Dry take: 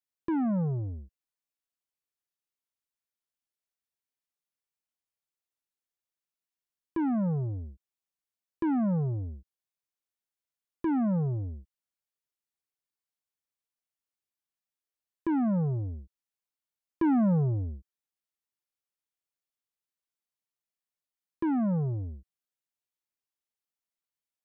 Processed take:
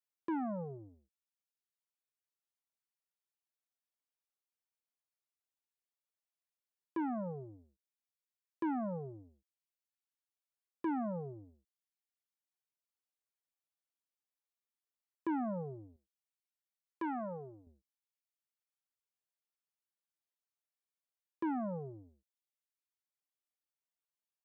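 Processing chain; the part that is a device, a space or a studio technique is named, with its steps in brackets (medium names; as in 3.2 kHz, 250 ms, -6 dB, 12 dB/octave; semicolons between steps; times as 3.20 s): filter by subtraction (in parallel: low-pass 610 Hz 12 dB/octave + polarity flip); on the sum: reverb removal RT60 0.99 s; 15.96–17.67 s: bass shelf 430 Hz -10.5 dB; trim -4.5 dB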